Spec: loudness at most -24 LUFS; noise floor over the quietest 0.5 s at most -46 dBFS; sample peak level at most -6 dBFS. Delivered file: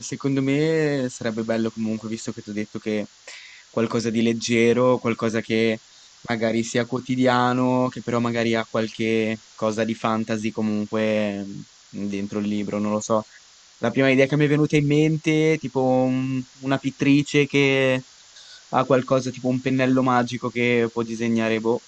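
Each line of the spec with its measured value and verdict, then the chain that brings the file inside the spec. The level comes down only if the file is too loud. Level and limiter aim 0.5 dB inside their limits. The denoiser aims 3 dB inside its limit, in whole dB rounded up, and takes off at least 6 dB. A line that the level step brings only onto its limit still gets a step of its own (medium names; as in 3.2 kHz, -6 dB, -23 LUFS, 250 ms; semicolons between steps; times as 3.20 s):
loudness -22.5 LUFS: fail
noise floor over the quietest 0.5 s -50 dBFS: pass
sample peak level -4.5 dBFS: fail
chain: trim -2 dB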